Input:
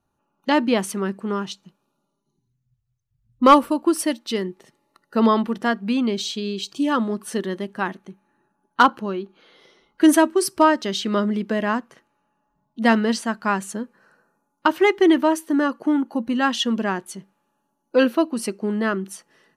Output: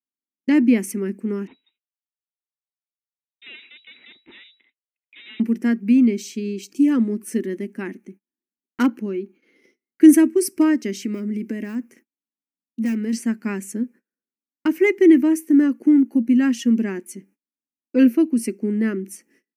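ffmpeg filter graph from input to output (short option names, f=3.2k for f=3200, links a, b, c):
-filter_complex "[0:a]asettb=1/sr,asplit=3[a][b][c];[a]atrim=end=1.474[d];[b]atrim=start=1.47:end=5.4,asetpts=PTS-STARTPTS,afade=t=in:d=0.004:c=qsin,afade=t=out:st=3.926:d=0.004:c=qsin,aeval=exprs='(tanh(35.5*val(0)+0.6)-tanh(0.6))/35.5':c=same,lowpass=f=3.3k:t=q:w=0.5098,lowpass=f=3.3k:t=q:w=0.6013,lowpass=f=3.3k:t=q:w=0.9,lowpass=f=3.3k:t=q:w=2.563,afreqshift=-3900[e];[c]atrim=start=5.396[f];[d][e]acrossfade=d=0.004:c1=hsin:c2=qsin[g];[g][f]acrossfade=d=0.004:c1=qsin:c2=hsin,asettb=1/sr,asplit=3[h][i][j];[h]atrim=end=11.004[k];[i]atrim=start=11:end=13.13,asetpts=PTS-STARTPTS,afade=t=in:d=0.004:c=qsin,afade=t=out:st=2.126:d=0.004:c=qsin,volume=13.5dB,asoftclip=hard,volume=-13.5dB,highshelf=f=6.8k:g=5.5,acompressor=threshold=-24dB:ratio=6:attack=3.2:release=140:knee=1:detection=peak[l];[j]atrim=start=13.126[m];[k][l]acrossfade=d=0.004:c1=hsin:c2=qsin[n];[n][m]acrossfade=d=0.004:c1=qsin:c2=hsin,aemphasis=mode=production:type=riaa,agate=range=-31dB:threshold=-49dB:ratio=16:detection=peak,firequalizer=gain_entry='entry(150,0);entry(240,15);entry(640,-13);entry(1100,-18);entry(2200,0);entry(3500,-25);entry(5500,-12);entry(9100,-15)':delay=0.05:min_phase=1"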